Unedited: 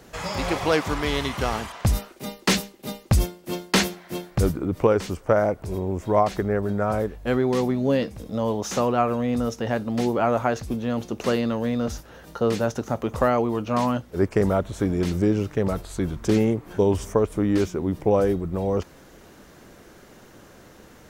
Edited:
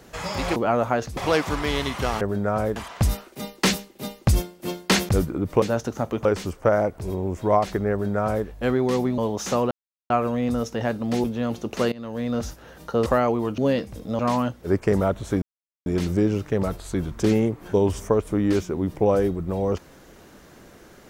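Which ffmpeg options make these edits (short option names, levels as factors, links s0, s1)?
-filter_complex "[0:a]asplit=16[s0][s1][s2][s3][s4][s5][s6][s7][s8][s9][s10][s11][s12][s13][s14][s15];[s0]atrim=end=0.562[s16];[s1]atrim=start=10.098:end=10.712[s17];[s2]atrim=start=0.558:end=1.602[s18];[s3]atrim=start=6.548:end=7.102[s19];[s4]atrim=start=1.598:end=3.932[s20];[s5]atrim=start=4.358:end=4.892[s21];[s6]atrim=start=12.528:end=13.162[s22];[s7]atrim=start=4.888:end=7.822[s23];[s8]atrim=start=8.428:end=8.96,asetpts=PTS-STARTPTS,afade=t=out:st=0.528:d=0.004:c=hsin,apad=pad_dur=0.39[s24];[s9]atrim=start=8.96:end=10.102,asetpts=PTS-STARTPTS,afade=t=in:d=0.004:c=hsin[s25];[s10]atrim=start=10.708:end=11.39,asetpts=PTS-STARTPTS,afade=t=out:st=0.678:d=0.004:c=hsin:silence=0.0944061[s26];[s11]atrim=start=11.39:end=12.532,asetpts=PTS-STARTPTS,afade=t=in:d=0.43:silence=0.0944061[s27];[s12]atrim=start=13.158:end=13.682[s28];[s13]atrim=start=7.818:end=8.432[s29];[s14]atrim=start=13.678:end=14.91,asetpts=PTS-STARTPTS,afade=t=out:st=1.228:d=0.004:c=hsin,apad=pad_dur=0.44[s30];[s15]atrim=start=14.91,asetpts=PTS-STARTPTS,afade=t=in:d=0.004:c=hsin[s31];[s16][s17]acrossfade=d=0.004:c1=hsin:c2=hsin[s32];[s32][s18]acrossfade=d=0.004:c1=hsin:c2=hsin[s33];[s33][s19]acrossfade=d=0.004:c1=hsin:c2=hsin[s34];[s34][s20]acrossfade=d=0.004:c1=hsin:c2=hsin[s35];[s35][s21]acrossfade=d=0.004:c1=hsin:c2=hsin[s36];[s36][s22]acrossfade=d=0.004:c1=hsin:c2=hsin[s37];[s37][s23]acrossfade=d=0.004:c1=hsin:c2=hsin[s38];[s24][s25]concat=n=2:v=0:a=1[s39];[s38][s39]acrossfade=d=0.004:c1=hsin:c2=hsin[s40];[s26][s27]concat=n=2:v=0:a=1[s41];[s40][s41]acrossfade=d=0.004:c1=hsin:c2=hsin[s42];[s42][s28]acrossfade=d=0.004:c1=hsin:c2=hsin[s43];[s43][s29]acrossfade=d=0.004:c1=hsin:c2=hsin[s44];[s30][s31]concat=n=2:v=0:a=1[s45];[s44][s45]acrossfade=d=0.004:c1=hsin:c2=hsin"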